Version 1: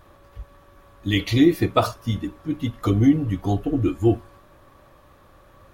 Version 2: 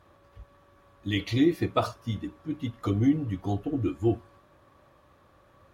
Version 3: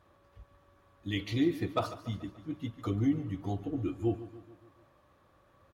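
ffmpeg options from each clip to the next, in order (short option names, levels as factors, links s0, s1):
-af "highpass=60,highshelf=f=11000:g=-10,volume=0.473"
-af "asoftclip=type=hard:threshold=0.224,aecho=1:1:144|288|432|576|720:0.178|0.0942|0.05|0.0265|0.014,volume=0.531"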